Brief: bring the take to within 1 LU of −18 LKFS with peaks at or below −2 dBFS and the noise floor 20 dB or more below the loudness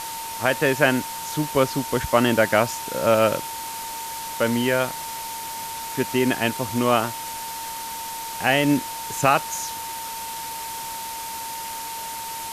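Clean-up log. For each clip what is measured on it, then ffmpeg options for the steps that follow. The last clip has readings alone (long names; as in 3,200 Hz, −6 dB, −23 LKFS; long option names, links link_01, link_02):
interfering tone 910 Hz; level of the tone −32 dBFS; background noise floor −33 dBFS; target noise floor −44 dBFS; integrated loudness −24.0 LKFS; sample peak −4.5 dBFS; target loudness −18.0 LKFS
→ -af "bandreject=frequency=910:width=30"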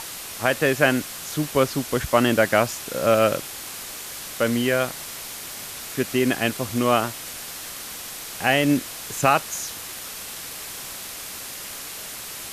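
interfering tone none found; background noise floor −36 dBFS; target noise floor −44 dBFS
→ -af "afftdn=noise_reduction=8:noise_floor=-36"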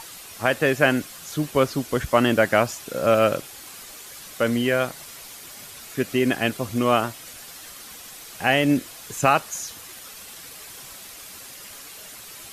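background noise floor −42 dBFS; target noise floor −43 dBFS
→ -af "afftdn=noise_reduction=6:noise_floor=-42"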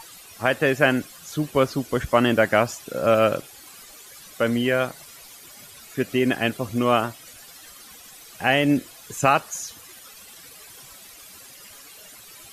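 background noise floor −46 dBFS; integrated loudness −22.5 LKFS; sample peak −5.0 dBFS; target loudness −18.0 LKFS
→ -af "volume=4.5dB,alimiter=limit=-2dB:level=0:latency=1"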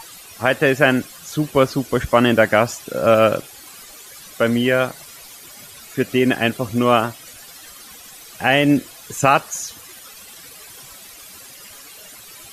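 integrated loudness −18.0 LKFS; sample peak −2.0 dBFS; background noise floor −41 dBFS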